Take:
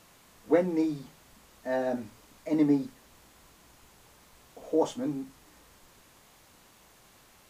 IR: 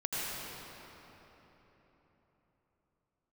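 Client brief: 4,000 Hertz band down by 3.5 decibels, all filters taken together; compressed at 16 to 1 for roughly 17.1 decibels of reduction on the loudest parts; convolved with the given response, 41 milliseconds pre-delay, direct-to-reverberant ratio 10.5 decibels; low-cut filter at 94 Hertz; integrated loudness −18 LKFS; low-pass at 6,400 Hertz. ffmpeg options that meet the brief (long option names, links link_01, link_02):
-filter_complex "[0:a]highpass=94,lowpass=6400,equalizer=frequency=4000:width_type=o:gain=-4,acompressor=threshold=-36dB:ratio=16,asplit=2[link_01][link_02];[1:a]atrim=start_sample=2205,adelay=41[link_03];[link_02][link_03]afir=irnorm=-1:irlink=0,volume=-17dB[link_04];[link_01][link_04]amix=inputs=2:normalize=0,volume=25.5dB"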